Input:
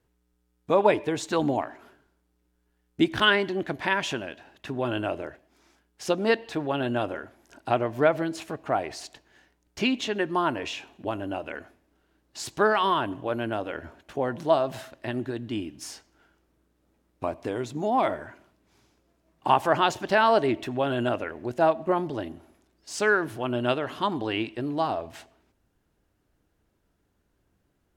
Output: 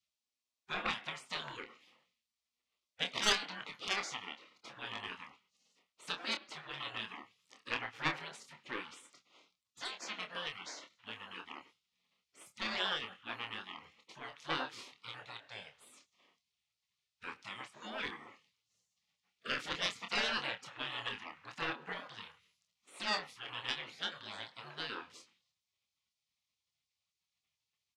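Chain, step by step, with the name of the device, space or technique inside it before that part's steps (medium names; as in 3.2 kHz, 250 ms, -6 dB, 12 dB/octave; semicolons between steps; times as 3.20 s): intercom (band-pass 500–4700 Hz; peaking EQ 1.6 kHz +9 dB 0.27 oct; saturation -12.5 dBFS, distortion -17 dB); spectral gate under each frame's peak -20 dB weak; doubling 27 ms -7 dB; trim +2 dB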